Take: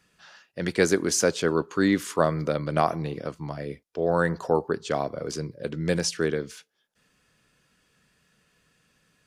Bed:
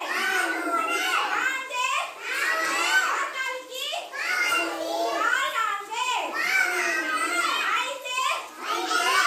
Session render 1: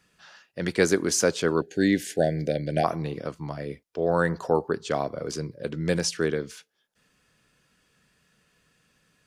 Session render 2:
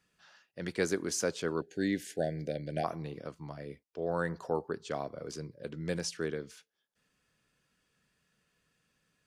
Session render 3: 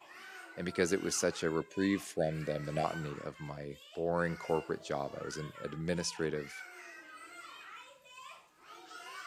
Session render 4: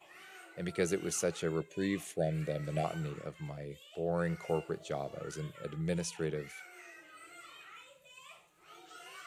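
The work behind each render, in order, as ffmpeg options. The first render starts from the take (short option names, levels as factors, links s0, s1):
-filter_complex "[0:a]asettb=1/sr,asplit=3[s0][s1][s2];[s0]atrim=end=1.614[s3];[s1]atrim=start=1.61:end=2.84,asetpts=PTS-STARTPTS,afade=t=in:d=0.004:c=qsin,afade=t=out:st=1.226:d=0.004:c=qsin,asuperstop=centerf=1100:order=12:qfactor=1.4[s4];[s2]atrim=start=2.836[s5];[s3][s4]acrossfade=d=0.004:c1=hsin:c2=qsin[s6];[s6][s5]acrossfade=d=0.004:c1=qsin:c2=hsin"
-af "volume=0.335"
-filter_complex "[1:a]volume=0.0531[s0];[0:a][s0]amix=inputs=2:normalize=0"
-af "equalizer=f=160:t=o:w=0.33:g=5,equalizer=f=250:t=o:w=0.33:g=-11,equalizer=f=1000:t=o:w=0.33:g=-9,equalizer=f=1600:t=o:w=0.33:g=-6,equalizer=f=5000:t=o:w=0.33:g=-9,equalizer=f=10000:t=o:w=0.33:g=3"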